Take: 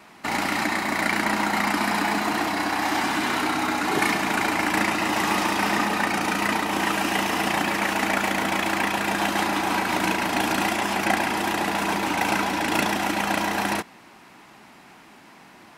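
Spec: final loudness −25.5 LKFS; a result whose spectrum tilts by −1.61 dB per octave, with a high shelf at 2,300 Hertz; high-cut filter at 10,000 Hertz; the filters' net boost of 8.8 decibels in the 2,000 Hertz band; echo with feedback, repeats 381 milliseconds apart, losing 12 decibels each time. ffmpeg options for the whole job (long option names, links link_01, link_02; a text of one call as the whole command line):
ffmpeg -i in.wav -af "lowpass=10000,equalizer=frequency=2000:width_type=o:gain=6.5,highshelf=frequency=2300:gain=8,aecho=1:1:381|762|1143:0.251|0.0628|0.0157,volume=-9dB" out.wav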